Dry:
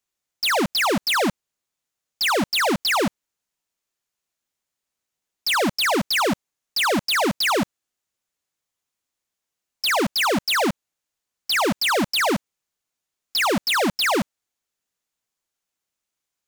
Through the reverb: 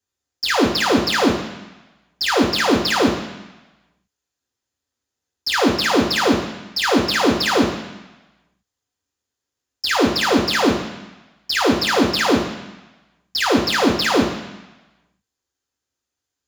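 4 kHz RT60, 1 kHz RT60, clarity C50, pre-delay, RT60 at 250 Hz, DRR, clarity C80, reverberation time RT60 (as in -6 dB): 1.1 s, 1.1 s, 4.0 dB, 3 ms, 1.0 s, -3.0 dB, 7.5 dB, 1.0 s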